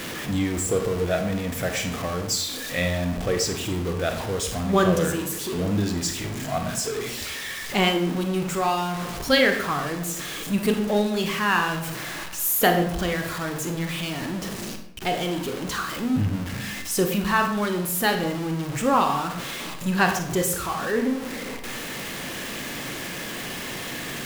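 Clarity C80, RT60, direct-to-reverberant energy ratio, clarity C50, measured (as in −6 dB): 10.5 dB, 0.80 s, 5.0 dB, 7.5 dB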